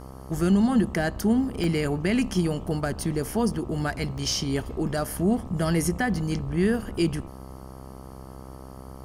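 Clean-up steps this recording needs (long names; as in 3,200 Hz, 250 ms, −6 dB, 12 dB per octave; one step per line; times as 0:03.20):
hum removal 65.4 Hz, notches 20
repair the gap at 0:01.64/0:03.54/0:04.18, 1 ms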